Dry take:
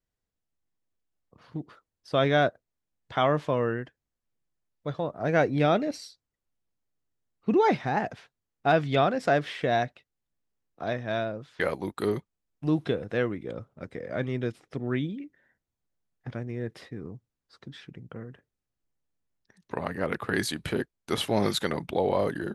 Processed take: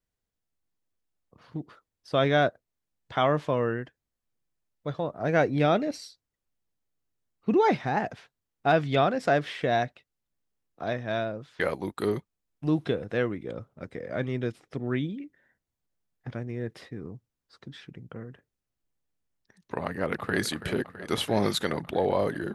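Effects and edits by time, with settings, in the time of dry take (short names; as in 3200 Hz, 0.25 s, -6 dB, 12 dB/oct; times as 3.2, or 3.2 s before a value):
19.85–20.4 echo throw 0.33 s, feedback 80%, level -13 dB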